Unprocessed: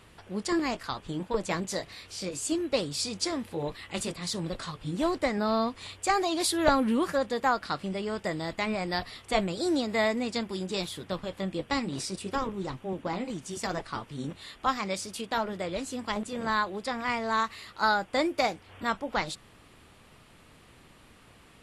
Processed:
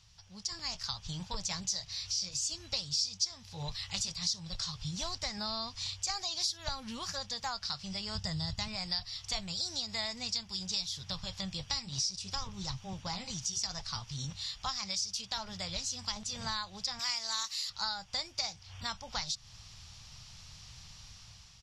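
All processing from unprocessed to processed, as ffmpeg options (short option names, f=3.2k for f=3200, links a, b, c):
-filter_complex "[0:a]asettb=1/sr,asplit=3[a][b][c];[a]atrim=end=8.154[d];[b]atrim=start=8.15:end=8.68,asetpts=PTS-STARTPTS,afade=t=in:d=0.004:c=qsin,afade=t=out:st=0.526:d=0.004:c=qsin,equalizer=f=83:t=o:w=2.7:g=13,bandreject=f=2.3k:w=8.2[e];[c]atrim=start=8.676[f];[d][e]acrossfade=d=0.004:c1=hsin:c2=qsin[g];[g][f]acrossfade=d=0.004:c1=qsin:c2=hsin,asettb=1/sr,asplit=3[h][i][j];[h]atrim=end=16.994[k];[i]atrim=start=16.99:end=17.7,asetpts=PTS-STARTPTS,afade=t=in:d=0.004:c=qsin,afade=t=out:st=0.706:d=0.004:c=qsin,aemphasis=mode=production:type=riaa,volume=16dB,asoftclip=hard,volume=-16dB[l];[j]atrim=start=17.696[m];[k][l]acrossfade=d=0.004:c1=hsin:c2=qsin[n];[n][m]acrossfade=d=0.004:c1=qsin:c2=hsin,dynaudnorm=f=300:g=5:m=11.5dB,firequalizer=gain_entry='entry(110,0);entry(300,-28);entry(820,-10);entry(1200,-12);entry(1900,-11);entry(5600,14);entry(8800,-11)':delay=0.05:min_phase=1,acompressor=threshold=-30dB:ratio=3,volume=-4.5dB"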